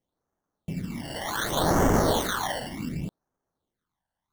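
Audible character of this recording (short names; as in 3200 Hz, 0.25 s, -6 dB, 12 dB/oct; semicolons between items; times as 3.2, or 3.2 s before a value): aliases and images of a low sample rate 2500 Hz, jitter 0%; phasing stages 12, 0.67 Hz, lowest notch 380–3900 Hz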